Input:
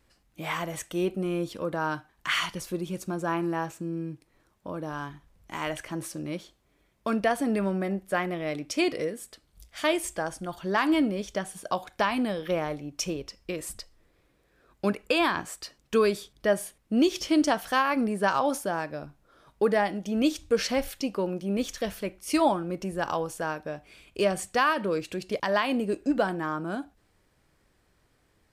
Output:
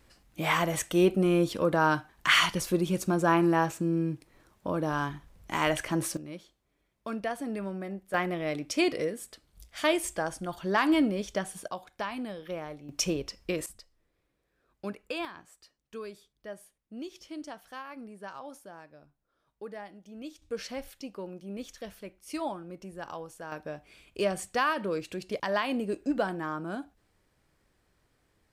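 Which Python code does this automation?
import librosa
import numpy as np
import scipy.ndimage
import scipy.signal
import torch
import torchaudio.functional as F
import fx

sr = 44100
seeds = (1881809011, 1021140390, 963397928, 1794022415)

y = fx.gain(x, sr, db=fx.steps((0.0, 5.0), (6.17, -8.0), (8.14, -0.5), (11.68, -9.0), (12.89, 2.0), (13.66, -10.5), (15.25, -18.0), (20.42, -11.0), (23.52, -3.5)))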